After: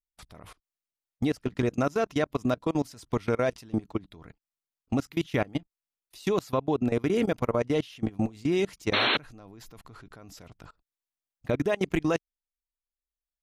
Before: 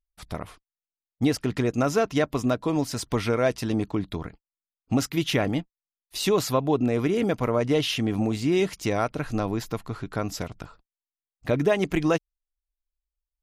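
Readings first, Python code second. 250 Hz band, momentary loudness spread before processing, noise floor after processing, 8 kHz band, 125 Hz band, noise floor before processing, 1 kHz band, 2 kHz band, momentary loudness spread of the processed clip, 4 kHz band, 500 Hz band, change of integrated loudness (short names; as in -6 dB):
-4.0 dB, 12 LU, under -85 dBFS, -11.5 dB, -5.0 dB, under -85 dBFS, -3.5 dB, -1.0 dB, 7 LU, -2.0 dB, -3.5 dB, -3.0 dB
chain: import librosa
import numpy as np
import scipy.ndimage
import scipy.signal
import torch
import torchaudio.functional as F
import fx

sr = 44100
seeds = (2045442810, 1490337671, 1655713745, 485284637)

y = fx.spec_paint(x, sr, seeds[0], shape='noise', start_s=8.93, length_s=0.24, low_hz=210.0, high_hz=4300.0, level_db=-16.0)
y = fx.level_steps(y, sr, step_db=24)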